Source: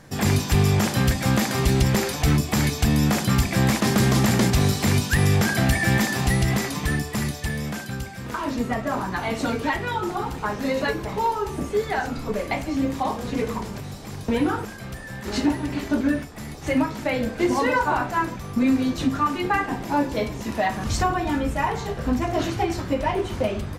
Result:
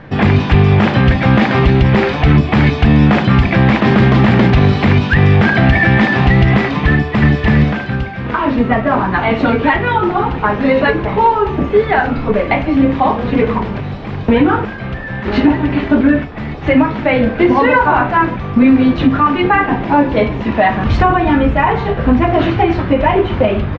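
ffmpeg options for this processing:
ffmpeg -i in.wav -filter_complex "[0:a]asplit=2[link_01][link_02];[link_02]afade=type=in:start_time=6.89:duration=0.01,afade=type=out:start_time=7.39:duration=0.01,aecho=0:1:330|660|990:0.944061|0.188812|0.0377624[link_03];[link_01][link_03]amix=inputs=2:normalize=0,lowpass=frequency=3100:width=0.5412,lowpass=frequency=3100:width=1.3066,alimiter=level_in=13.5dB:limit=-1dB:release=50:level=0:latency=1,volume=-1dB" out.wav

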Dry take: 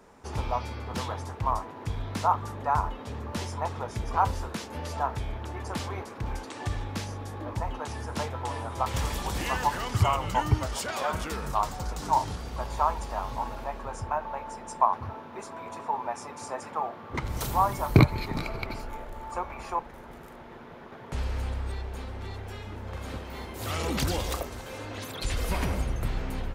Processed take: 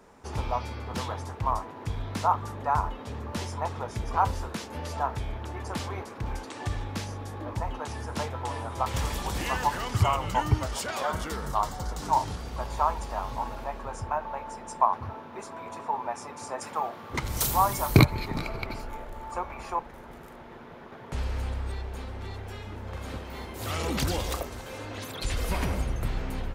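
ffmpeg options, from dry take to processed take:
ffmpeg -i in.wav -filter_complex "[0:a]asettb=1/sr,asplit=3[link_01][link_02][link_03];[link_01]atrim=end=11.024[link_04];[link_02]atrim=start=11.02:end=11.98,asetpts=PTS-STARTPTS,afade=type=in:duration=0.004:curve=qsin,afade=type=out:start_time=0.956:duration=0.004:curve=qsin,bandreject=frequency=2500:width=7[link_05];[link_03]atrim=start=11.976[link_06];[link_04][link_05]acrossfade=duration=0.004:curve1=hsin:curve2=qsin[link_07];[link_07][link_06]acrossfade=duration=0.004:curve1=qsin:curve2=hsin,asettb=1/sr,asplit=3[link_08][link_09][link_10];[link_08]atrim=end=16.614[link_11];[link_09]atrim=start=16.61:end=18.05,asetpts=PTS-STARTPTS,afade=type=in:duration=0.004:curve=qsin,afade=type=out:start_time=1.436:duration=0.004:curve=qsin,highshelf=frequency=3700:gain=11.5[link_12];[link_10]atrim=start=18.046[link_13];[link_11][link_12]acrossfade=duration=0.004:curve1=hsin:curve2=qsin[link_14];[link_14][link_13]acrossfade=duration=0.004:curve1=qsin:curve2=hsin" out.wav

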